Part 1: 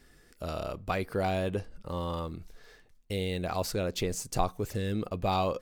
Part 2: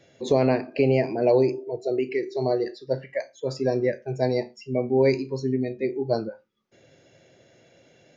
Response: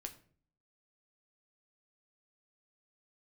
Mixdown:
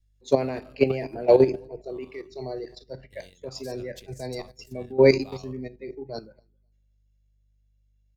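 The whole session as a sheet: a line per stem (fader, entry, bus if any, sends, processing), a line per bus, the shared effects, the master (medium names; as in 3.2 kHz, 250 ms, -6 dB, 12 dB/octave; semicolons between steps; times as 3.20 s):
-3.5 dB, 0.00 s, no send, no echo send, auto duck -12 dB, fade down 0.90 s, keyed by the second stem
-7.0 dB, 0.00 s, send -5 dB, echo send -20 dB, high-pass 59 Hz 24 dB/octave; hum 50 Hz, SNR 20 dB; short-mantissa float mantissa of 8-bit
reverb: on, RT60 0.50 s, pre-delay 7 ms
echo: feedback delay 264 ms, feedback 35%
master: level held to a coarse grid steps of 11 dB; treble shelf 2.6 kHz +8.5 dB; three bands expanded up and down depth 100%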